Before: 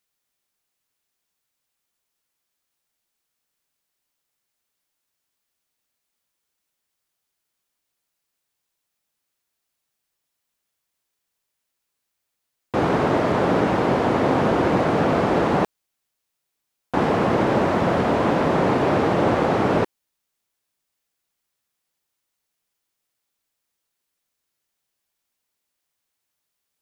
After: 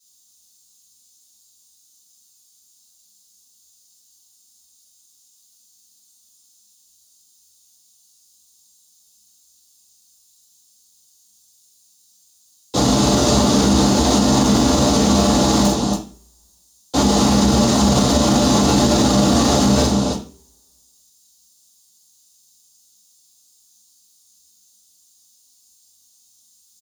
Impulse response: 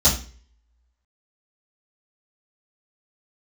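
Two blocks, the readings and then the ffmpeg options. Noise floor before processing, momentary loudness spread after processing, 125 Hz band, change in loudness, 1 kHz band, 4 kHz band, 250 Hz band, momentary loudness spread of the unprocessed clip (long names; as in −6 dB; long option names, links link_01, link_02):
−80 dBFS, 6 LU, +6.5 dB, +5.0 dB, +1.0 dB, +16.0 dB, +7.5 dB, 4 LU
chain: -filter_complex "[0:a]equalizer=frequency=250:width_type=o:width=1:gain=8,equalizer=frequency=1000:width_type=o:width=1:gain=5,equalizer=frequency=2000:width_type=o:width=1:gain=-8,equalizer=frequency=4000:width_type=o:width=1:gain=8,equalizer=frequency=8000:width_type=o:width=1:gain=10,aecho=1:1:43.73|282.8:0.631|0.398,asoftclip=type=hard:threshold=-11.5dB,acrossover=split=330|1500[link_01][link_02][link_03];[link_03]crystalizer=i=6:c=0[link_04];[link_01][link_02][link_04]amix=inputs=3:normalize=0[link_05];[1:a]atrim=start_sample=2205,asetrate=43659,aresample=44100[link_06];[link_05][link_06]afir=irnorm=-1:irlink=0,alimiter=level_in=-13.5dB:limit=-1dB:release=50:level=0:latency=1,volume=-5dB"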